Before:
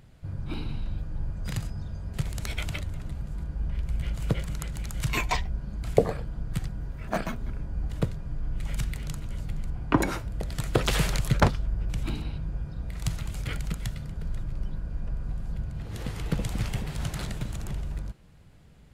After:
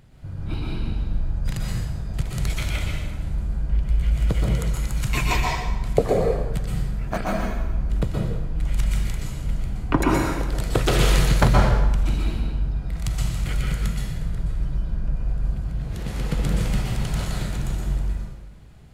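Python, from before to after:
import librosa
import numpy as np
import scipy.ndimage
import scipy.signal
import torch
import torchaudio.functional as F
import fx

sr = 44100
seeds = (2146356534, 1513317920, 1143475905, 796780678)

y = fx.rev_plate(x, sr, seeds[0], rt60_s=1.1, hf_ratio=0.8, predelay_ms=110, drr_db=-2.5)
y = y * librosa.db_to_amplitude(1.0)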